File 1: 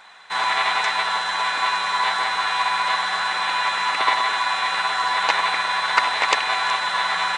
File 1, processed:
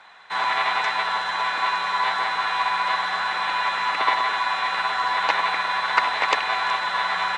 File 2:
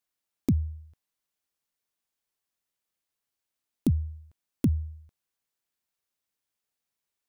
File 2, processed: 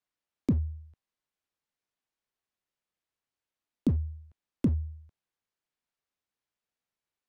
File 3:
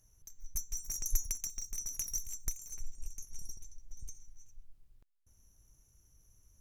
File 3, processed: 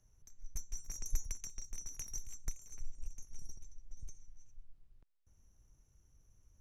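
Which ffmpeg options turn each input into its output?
-filter_complex "[0:a]aemphasis=mode=reproduction:type=50fm,acrossover=split=210|880|6800[s0][s1][s2][s3];[s0]volume=15,asoftclip=hard,volume=0.0668[s4];[s4][s1][s2][s3]amix=inputs=4:normalize=0,volume=0.891"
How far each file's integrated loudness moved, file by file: -2.0 LU, -2.0 LU, -7.5 LU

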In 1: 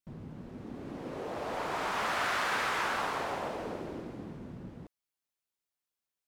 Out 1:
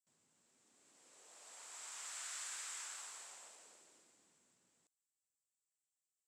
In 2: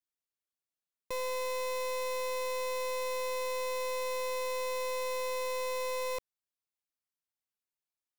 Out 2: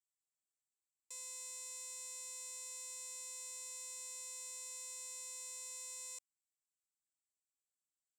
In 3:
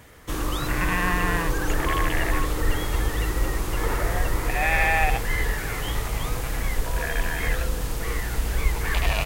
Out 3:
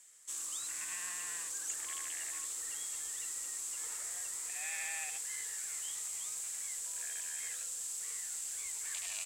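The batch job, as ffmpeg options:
-af "bandpass=f=7700:t=q:w=6.8:csg=0,volume=2.66"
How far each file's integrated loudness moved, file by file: -13.0 LU, -10.5 LU, -12.0 LU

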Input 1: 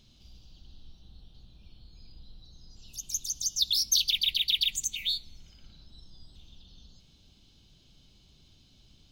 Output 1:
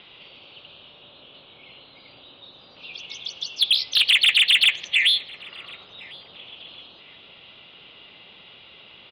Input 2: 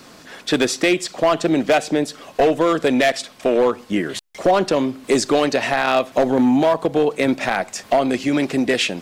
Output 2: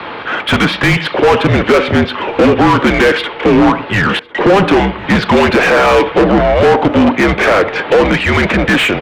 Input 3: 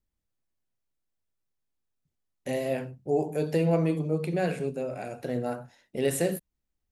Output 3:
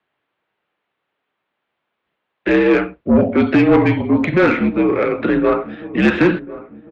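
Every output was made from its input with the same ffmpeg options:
-filter_complex "[0:a]highpass=f=290:t=q:w=0.5412,highpass=f=290:t=q:w=1.307,lowpass=f=3600:t=q:w=0.5176,lowpass=f=3600:t=q:w=0.7071,lowpass=f=3600:t=q:w=1.932,afreqshift=-200,asplit=2[s0][s1];[s1]highpass=f=720:p=1,volume=31.6,asoftclip=type=tanh:threshold=0.631[s2];[s0][s2]amix=inputs=2:normalize=0,lowpass=f=1700:p=1,volume=0.501,asplit=2[s3][s4];[s4]adelay=1052,lowpass=f=1200:p=1,volume=0.15,asplit=2[s5][s6];[s6]adelay=1052,lowpass=f=1200:p=1,volume=0.44,asplit=2[s7][s8];[s8]adelay=1052,lowpass=f=1200:p=1,volume=0.44,asplit=2[s9][s10];[s10]adelay=1052,lowpass=f=1200:p=1,volume=0.44[s11];[s3][s5][s7][s9][s11]amix=inputs=5:normalize=0,volume=1.41"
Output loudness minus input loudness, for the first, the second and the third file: +9.0 LU, +8.0 LU, +13.5 LU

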